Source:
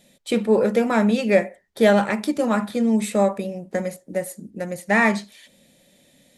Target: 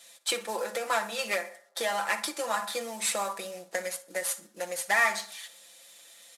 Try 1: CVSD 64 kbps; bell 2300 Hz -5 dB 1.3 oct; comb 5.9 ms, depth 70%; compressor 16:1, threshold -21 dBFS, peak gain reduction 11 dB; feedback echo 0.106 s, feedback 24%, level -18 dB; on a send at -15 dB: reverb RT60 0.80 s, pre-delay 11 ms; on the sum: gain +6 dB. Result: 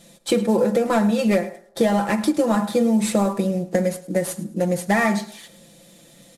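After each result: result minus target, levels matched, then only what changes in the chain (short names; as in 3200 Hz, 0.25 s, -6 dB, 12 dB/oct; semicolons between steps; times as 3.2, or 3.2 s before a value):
echo 46 ms late; 1000 Hz band -4.0 dB
change: feedback echo 60 ms, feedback 24%, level -18 dB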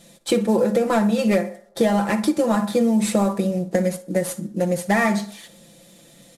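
1000 Hz band -4.0 dB
add after compressor: HPF 1100 Hz 12 dB/oct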